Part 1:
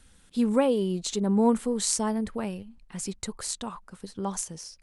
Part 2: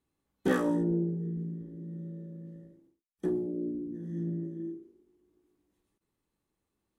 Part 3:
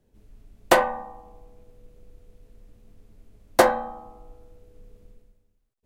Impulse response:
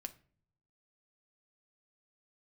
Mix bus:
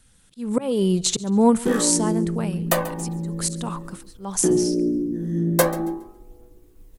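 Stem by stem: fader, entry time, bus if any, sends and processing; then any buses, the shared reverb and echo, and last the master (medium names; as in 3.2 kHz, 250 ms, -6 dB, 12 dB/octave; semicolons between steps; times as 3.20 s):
-2.5 dB, 0.00 s, no send, echo send -21.5 dB, slow attack 285 ms; peaking EQ 130 Hz +10 dB 0.42 oct
+2.0 dB, 1.20 s, no send, no echo send, peak limiter -23 dBFS, peak gain reduction 7.5 dB
-15.0 dB, 2.00 s, no send, echo send -18 dB, treble shelf 8.5 kHz +11.5 dB; expander -44 dBFS; phaser 0.45 Hz, delay 2.5 ms, feedback 50%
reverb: none
echo: feedback delay 138 ms, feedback 28%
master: treble shelf 6.6 kHz +7 dB; level rider gain up to 11 dB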